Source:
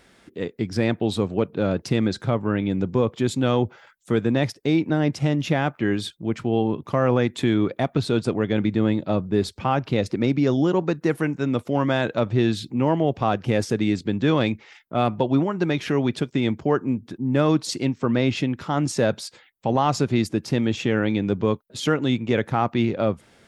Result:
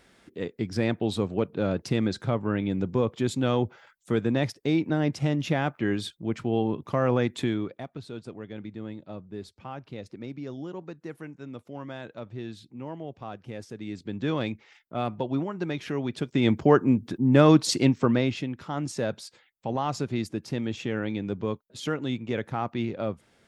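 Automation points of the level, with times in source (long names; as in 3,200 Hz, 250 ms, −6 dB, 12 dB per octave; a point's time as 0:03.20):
0:07.39 −4 dB
0:07.91 −17 dB
0:13.75 −17 dB
0:14.22 −8 dB
0:16.11 −8 dB
0:16.54 +2.5 dB
0:17.97 +2.5 dB
0:18.40 −8 dB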